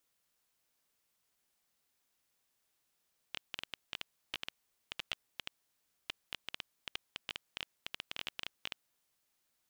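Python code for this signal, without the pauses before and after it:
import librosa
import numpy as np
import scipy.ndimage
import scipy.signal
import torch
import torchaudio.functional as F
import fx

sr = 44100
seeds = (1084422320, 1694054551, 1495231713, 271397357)

y = fx.geiger_clicks(sr, seeds[0], length_s=5.53, per_s=10.0, level_db=-20.5)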